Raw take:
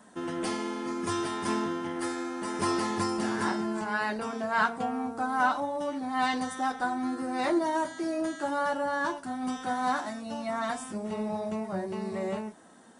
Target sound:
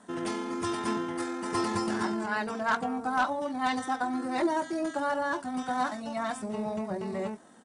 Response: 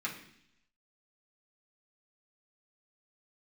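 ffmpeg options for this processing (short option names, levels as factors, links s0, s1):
-af "aeval=exprs='0.141*(abs(mod(val(0)/0.141+3,4)-2)-1)':c=same,atempo=1.7,aresample=22050,aresample=44100"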